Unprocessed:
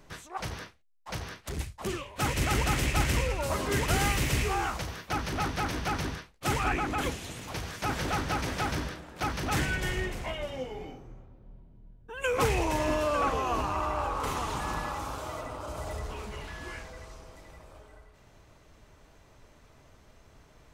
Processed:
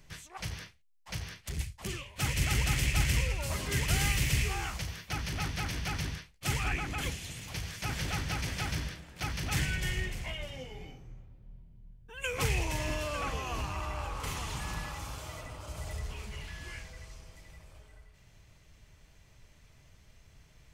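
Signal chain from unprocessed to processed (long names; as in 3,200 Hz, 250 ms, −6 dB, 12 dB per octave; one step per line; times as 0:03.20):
flat-topped bell 580 Hz −9.5 dB 3 octaves
notch filter 3,800 Hz, Q 23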